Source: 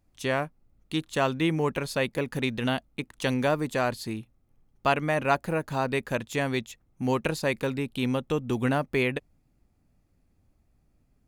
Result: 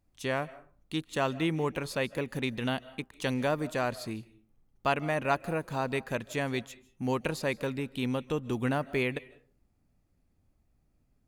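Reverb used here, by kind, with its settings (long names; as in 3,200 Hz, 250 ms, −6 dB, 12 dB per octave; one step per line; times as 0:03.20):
comb and all-pass reverb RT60 0.42 s, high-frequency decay 0.6×, pre-delay 115 ms, DRR 19 dB
level −4 dB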